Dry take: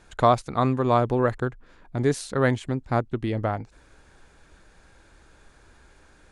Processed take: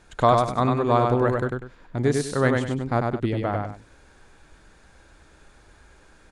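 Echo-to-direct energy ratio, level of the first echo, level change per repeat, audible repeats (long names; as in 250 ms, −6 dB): −3.0 dB, −3.5 dB, −10.5 dB, 2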